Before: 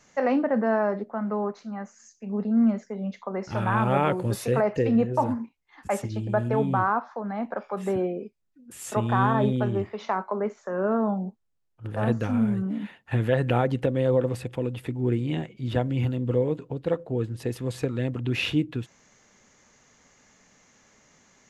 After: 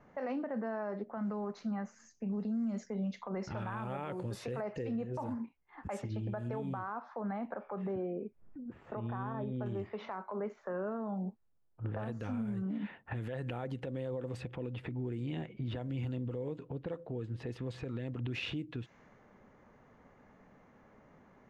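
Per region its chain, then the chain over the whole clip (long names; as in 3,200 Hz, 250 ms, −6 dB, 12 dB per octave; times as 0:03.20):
0:01.17–0:03.49: bass and treble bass +5 dB, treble +15 dB + downward compressor 2.5 to 1, threshold −23 dBFS
0:07.55–0:09.66: upward compression, threshold −39 dBFS + head-to-tape spacing loss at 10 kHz 27 dB
whole clip: low-pass that shuts in the quiet parts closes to 1,100 Hz, open at −19 dBFS; downward compressor 5 to 1, threshold −36 dBFS; brickwall limiter −32 dBFS; level +2.5 dB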